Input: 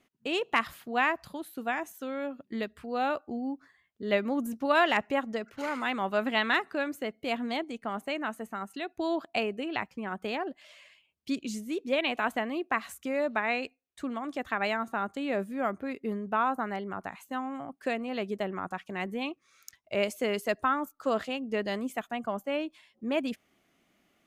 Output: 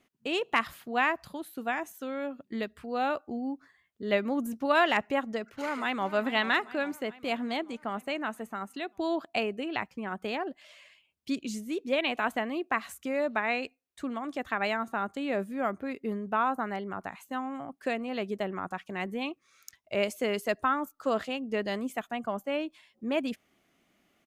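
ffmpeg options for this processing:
-filter_complex "[0:a]asplit=2[s0][s1];[s1]afade=t=in:st=5.35:d=0.01,afade=t=out:st=6.09:d=0.01,aecho=0:1:420|840|1260|1680|2100|2520|2940:0.199526|0.129692|0.0842998|0.0547949|0.0356167|0.0231508|0.015048[s2];[s0][s2]amix=inputs=2:normalize=0"

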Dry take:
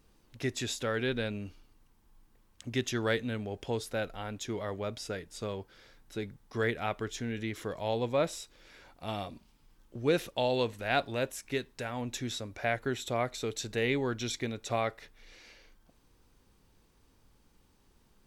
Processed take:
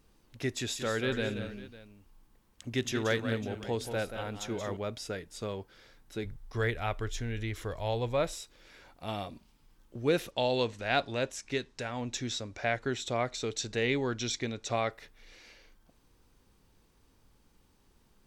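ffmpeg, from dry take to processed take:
-filter_complex "[0:a]asettb=1/sr,asplit=3[s0][s1][s2];[s0]atrim=end=0.574[s3];[s1]atrim=start=0.57:end=4.77,asetpts=PTS-STARTPTS,afade=t=in:d=0.004:c=qsin,afade=t=out:st=4.196:d=0.004:c=qsin,aecho=1:1:180|224|551:0.376|0.2|0.126,atrim=end_sample=185220[s4];[s2]atrim=start=4.766[s5];[s3][s4]acrossfade=d=0.004:c1=hsin:c2=qsin[s6];[s6][s5]acrossfade=d=0.004:c1=qsin:c2=hsin,asplit=3[s7][s8][s9];[s7]afade=t=out:st=6.24:d=0.02[s10];[s8]asubboost=boost=8:cutoff=70,afade=t=in:st=6.24:d=0.02,afade=t=out:st=8.32:d=0.02[s11];[s9]afade=t=in:st=8.32:d=0.02[s12];[s10][s11][s12]amix=inputs=3:normalize=0,asettb=1/sr,asplit=3[s13][s14][s15];[s13]atrim=end=10.314[s16];[s14]atrim=start=10.31:end=14.91,asetpts=PTS-STARTPTS,afade=t=in:d=0.004:c=qsin,afade=t=out:st=4.596:d=0.004:c=qsin,lowpass=f=6400:t=q:w=1.5[s17];[s15]atrim=start=14.906[s18];[s16][s17]acrossfade=d=0.004:c1=hsin:c2=qsin[s19];[s19][s18]acrossfade=d=0.004:c1=qsin:c2=hsin"

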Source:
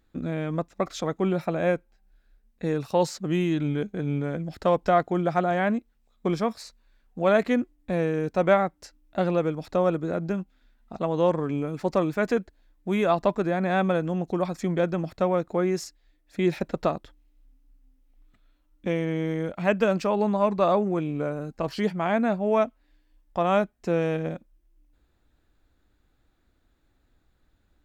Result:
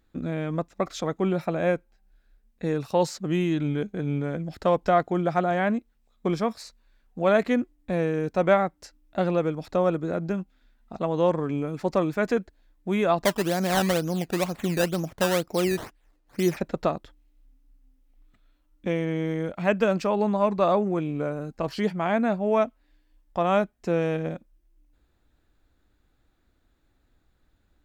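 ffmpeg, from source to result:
-filter_complex "[0:a]asettb=1/sr,asplit=3[s0][s1][s2];[s0]atrim=end=13.244[s3];[s1]atrim=start=13.24:end=16.57,asetpts=PTS-STARTPTS,afade=t=in:d=0.004:c=qsin,afade=t=out:st=3.326:d=0.004:c=qsin,acrusher=samples=14:mix=1:aa=0.000001:lfo=1:lforange=14:lforate=2.1[s4];[s2]atrim=start=16.566[s5];[s3][s4]acrossfade=d=0.004:c1=hsin:c2=qsin[s6];[s6][s5]acrossfade=d=0.004:c1=qsin:c2=hsin"

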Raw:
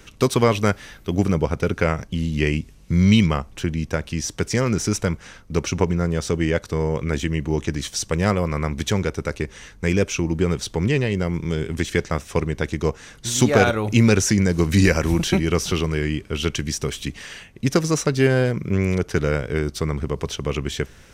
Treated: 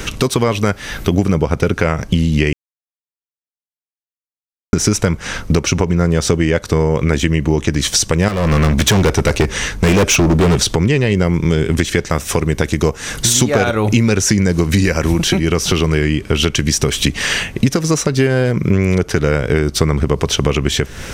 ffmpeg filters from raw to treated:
-filter_complex "[0:a]asettb=1/sr,asplit=3[s0][s1][s2];[s0]atrim=end=8.284[s3];[s1]atrim=start=8.28:end=10.58,asetpts=PTS-STARTPTS,afade=t=in:d=0.004:c=qsin,afade=t=out:st=2.296:d=0.004:c=qsin,asoftclip=type=hard:threshold=0.0596[s4];[s2]atrim=start=10.576[s5];[s3][s4]acrossfade=d=0.004:c1=hsin:c2=qsin[s6];[s6][s5]acrossfade=d=0.004:c1=qsin:c2=hsin,asettb=1/sr,asplit=3[s7][s8][s9];[s7]atrim=end=12.054[s10];[s8]atrim=start=12.05:end=13.33,asetpts=PTS-STARTPTS,afade=t=in:d=0.004:c=qsin,afade=t=out:st=1.276:d=0.004:c=qsin,highshelf=f=9000:g=10[s11];[s9]atrim=start=13.326[s12];[s10][s11]acrossfade=d=0.004:c1=hsin:c2=qsin[s13];[s13][s12]acrossfade=d=0.004:c1=qsin:c2=hsin,asplit=3[s14][s15][s16];[s14]atrim=end=2.53,asetpts=PTS-STARTPTS,afade=t=out:st=2.526:d=0.004:c=hsin[s17];[s15]atrim=start=2.53:end=4.73,asetpts=PTS-STARTPTS,volume=0[s18];[s16]atrim=start=4.73,asetpts=PTS-STARTPTS,afade=t=in:d=0.004:c=hsin[s19];[s17][s18][s19]concat=n=3:v=0:a=1,acompressor=threshold=0.0282:ratio=12,alimiter=level_in=12.6:limit=0.891:release=50:level=0:latency=1,volume=0.891"

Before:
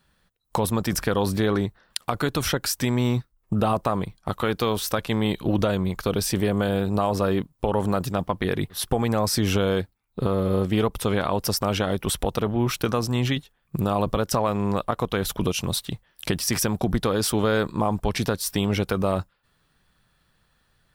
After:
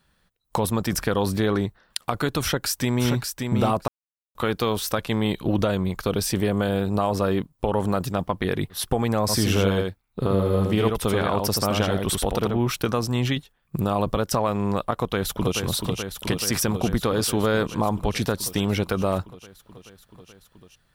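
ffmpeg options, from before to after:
-filter_complex "[0:a]asplit=2[s0][s1];[s1]afade=t=in:st=2.41:d=0.01,afade=t=out:st=3.12:d=0.01,aecho=0:1:580|1160:0.562341|0.0562341[s2];[s0][s2]amix=inputs=2:normalize=0,asplit=3[s3][s4][s5];[s3]afade=t=out:st=9.28:d=0.02[s6];[s4]aecho=1:1:82:0.631,afade=t=in:st=9.28:d=0.02,afade=t=out:st=12.57:d=0.02[s7];[s5]afade=t=in:st=12.57:d=0.02[s8];[s6][s7][s8]amix=inputs=3:normalize=0,asplit=2[s9][s10];[s10]afade=t=in:st=14.93:d=0.01,afade=t=out:st=15.59:d=0.01,aecho=0:1:430|860|1290|1720|2150|2580|3010|3440|3870|4300|4730|5160:0.530884|0.424708|0.339766|0.271813|0.21745|0.17396|0.139168|0.111335|0.0890676|0.0712541|0.0570033|0.0456026[s11];[s9][s11]amix=inputs=2:normalize=0,asplit=3[s12][s13][s14];[s12]atrim=end=3.88,asetpts=PTS-STARTPTS,afade=t=out:st=3.876:d=0.004:c=hsin[s15];[s13]atrim=start=3.88:end=4.35,asetpts=PTS-STARTPTS,volume=0[s16];[s14]atrim=start=4.35,asetpts=PTS-STARTPTS,afade=t=in:d=0.004:c=hsin[s17];[s15][s16][s17]concat=n=3:v=0:a=1"

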